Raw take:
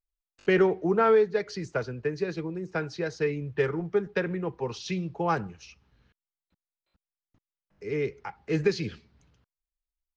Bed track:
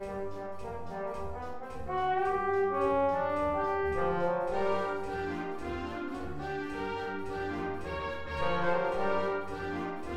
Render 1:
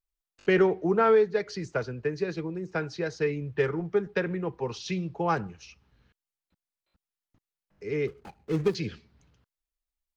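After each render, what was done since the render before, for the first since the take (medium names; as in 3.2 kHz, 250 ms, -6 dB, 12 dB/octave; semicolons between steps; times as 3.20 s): 8.07–8.75 s: median filter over 41 samples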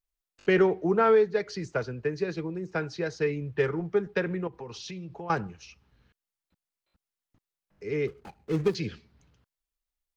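4.47–5.30 s: compression 4:1, threshold -37 dBFS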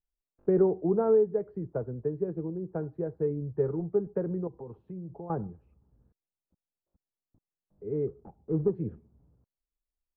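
Bessel low-pass 580 Hz, order 4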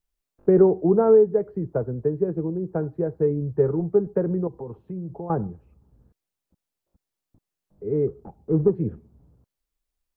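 trim +7.5 dB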